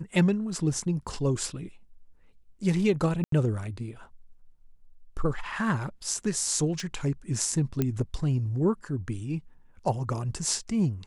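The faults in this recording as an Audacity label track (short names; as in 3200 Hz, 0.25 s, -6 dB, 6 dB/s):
3.240000	3.320000	gap 83 ms
6.800000	6.800000	pop
7.820000	7.820000	pop -13 dBFS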